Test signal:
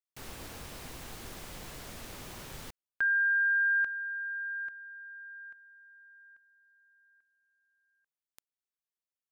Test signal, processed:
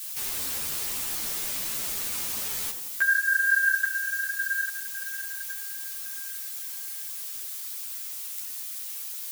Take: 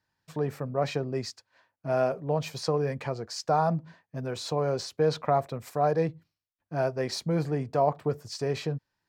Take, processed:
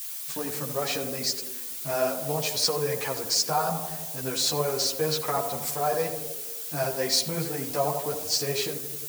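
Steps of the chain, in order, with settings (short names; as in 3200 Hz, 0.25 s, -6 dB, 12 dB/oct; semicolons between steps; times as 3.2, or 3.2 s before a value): block floating point 7-bit; in parallel at +0.5 dB: compressor 6:1, threshold -34 dBFS; on the sum: low shelf 260 Hz +12 dB; notches 60/120/180 Hz; requantised 8-bit, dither triangular; tilt +4.5 dB/oct; on a send: tape echo 84 ms, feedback 77%, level -6 dB, low-pass 1200 Hz; on the sum: ensemble effect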